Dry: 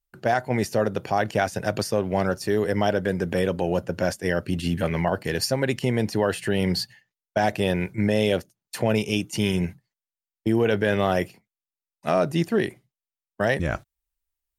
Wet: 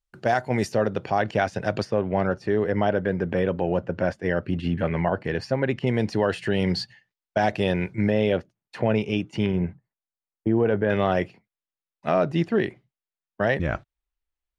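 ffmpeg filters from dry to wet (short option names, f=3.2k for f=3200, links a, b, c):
-af "asetnsamples=n=441:p=0,asendcmd='0.72 lowpass f 4200;1.85 lowpass f 2400;5.87 lowpass f 4900;8.1 lowpass f 2500;9.46 lowpass f 1400;10.9 lowpass f 3400',lowpass=8.1k"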